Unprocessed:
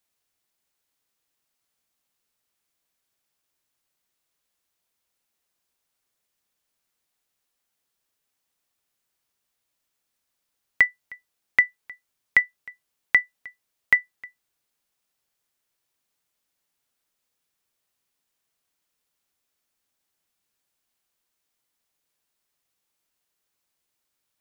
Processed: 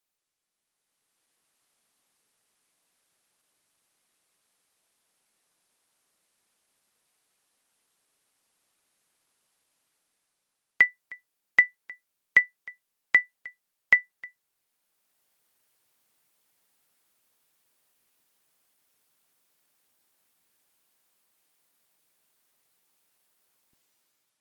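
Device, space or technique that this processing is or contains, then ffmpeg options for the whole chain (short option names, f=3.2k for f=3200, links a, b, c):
video call: -af "highpass=130,dynaudnorm=f=400:g=5:m=13.5dB,volume=-5dB" -ar 48000 -c:a libopus -b:a 24k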